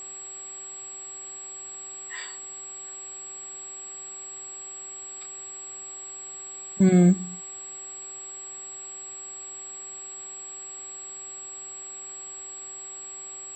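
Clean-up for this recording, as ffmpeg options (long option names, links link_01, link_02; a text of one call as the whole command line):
ffmpeg -i in.wav -af "adeclick=threshold=4,bandreject=frequency=384.6:width_type=h:width=4,bandreject=frequency=769.2:width_type=h:width=4,bandreject=frequency=1153.8:width_type=h:width=4,bandreject=frequency=7700:width=30,afwtdn=0.0032" out.wav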